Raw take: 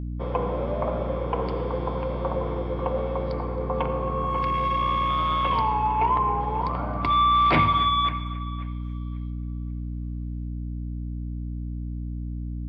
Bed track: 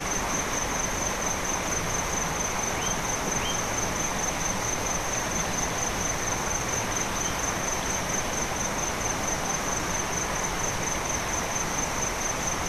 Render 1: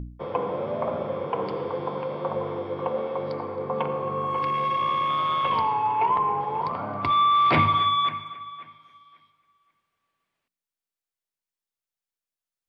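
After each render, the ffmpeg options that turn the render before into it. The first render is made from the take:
-af "bandreject=f=60:t=h:w=4,bandreject=f=120:t=h:w=4,bandreject=f=180:t=h:w=4,bandreject=f=240:t=h:w=4,bandreject=f=300:t=h:w=4"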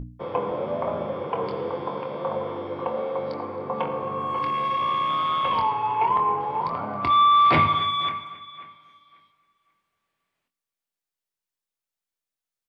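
-filter_complex "[0:a]asplit=2[a][b];[b]adelay=24,volume=-7.5dB[c];[a][c]amix=inputs=2:normalize=0,aecho=1:1:490:0.0708"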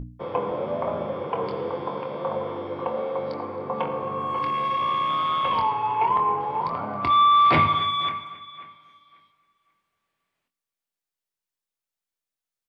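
-af anull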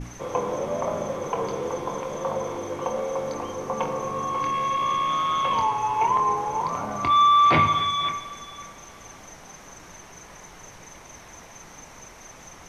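-filter_complex "[1:a]volume=-16.5dB[a];[0:a][a]amix=inputs=2:normalize=0"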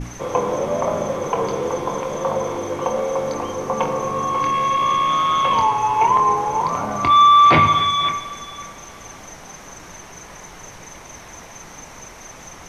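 -af "volume=6dB,alimiter=limit=-3dB:level=0:latency=1"

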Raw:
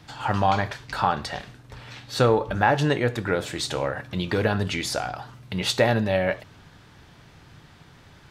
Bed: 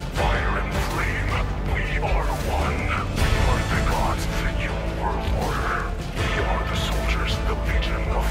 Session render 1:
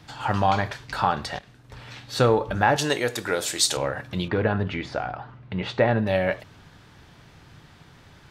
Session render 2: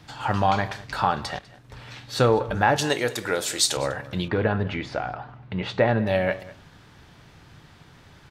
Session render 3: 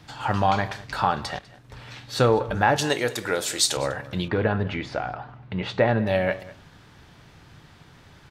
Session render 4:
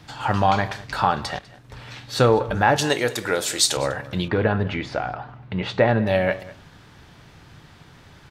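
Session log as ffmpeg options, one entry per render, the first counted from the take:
-filter_complex "[0:a]asettb=1/sr,asplit=3[a][b][c];[a]atrim=end=2.764[d];[b]atrim=start=2.76:end=3.77,asetpts=PTS-STARTPTS,afade=t=in:d=0.004:c=qsin,afade=t=out:st=1.006:d=0.004:c=qsin,bass=f=250:g=-10,treble=f=4k:g=13[e];[c]atrim=start=3.766[f];[d][e]acrossfade=d=0.004:c1=hsin:c2=qsin[g];[g][f]acrossfade=d=0.004:c1=qsin:c2=hsin,asettb=1/sr,asplit=3[h][i][j];[h]atrim=end=4.284[k];[i]atrim=start=4.28:end=6.07,asetpts=PTS-STARTPTS,afade=t=in:d=0.004:c=qsin,afade=t=out:st=1.786:d=0.004:c=qsin,lowpass=2.2k[l];[j]atrim=start=6.066[m];[k][l]acrossfade=d=0.004:c1=hsin:c2=qsin[n];[n][m]acrossfade=d=0.004:c1=qsin:c2=hsin,asplit=2[o][p];[o]atrim=end=1.39,asetpts=PTS-STARTPTS,afade=t=out:st=1.386:d=0.004:c=hsin:silence=0.237137[q];[p]atrim=start=1.39,asetpts=PTS-STARTPTS,afade=t=in:d=0.41:silence=0.237137[r];[q][r]concat=n=2:v=0:a=1"
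-filter_complex "[0:a]asplit=2[a][b];[b]adelay=198.3,volume=-19dB,highshelf=f=4k:g=-4.46[c];[a][c]amix=inputs=2:normalize=0"
-af anull
-af "volume=2.5dB,alimiter=limit=-3dB:level=0:latency=1"

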